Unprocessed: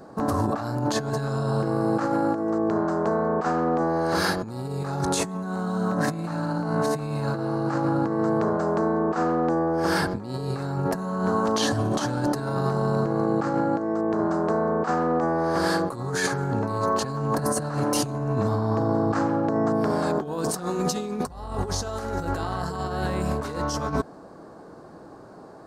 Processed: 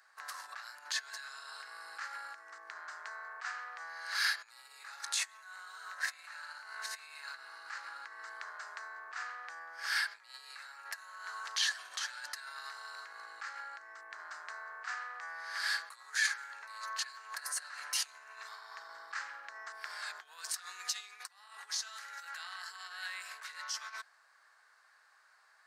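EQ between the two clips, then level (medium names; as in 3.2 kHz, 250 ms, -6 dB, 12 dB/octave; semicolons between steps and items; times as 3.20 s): dynamic bell 4.5 kHz, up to +4 dB, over -44 dBFS, Q 1.1; ladder high-pass 1.6 kHz, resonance 50%; +1.5 dB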